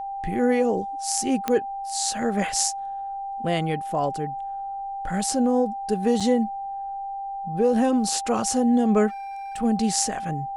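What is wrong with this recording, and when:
whistle 790 Hz −29 dBFS
0:01.48: click −9 dBFS
0:06.20–0:06.21: drop-out 5.3 ms
0:09.08–0:09.57: clipping −32.5 dBFS

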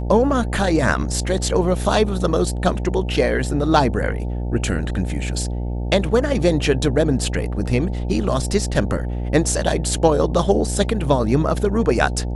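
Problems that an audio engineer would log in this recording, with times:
mains buzz 60 Hz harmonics 15 −24 dBFS

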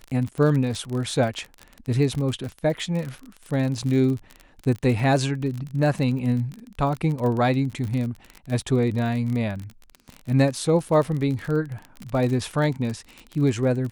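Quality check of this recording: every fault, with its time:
surface crackle 38 per second −28 dBFS

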